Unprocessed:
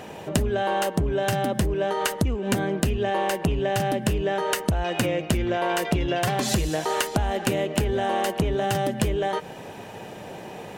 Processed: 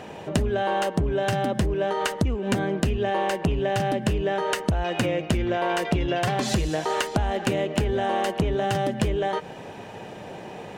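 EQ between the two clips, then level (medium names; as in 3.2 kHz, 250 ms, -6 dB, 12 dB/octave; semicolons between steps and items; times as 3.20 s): treble shelf 8.7 kHz -9.5 dB; peaking EQ 13 kHz -4.5 dB 0.45 oct; 0.0 dB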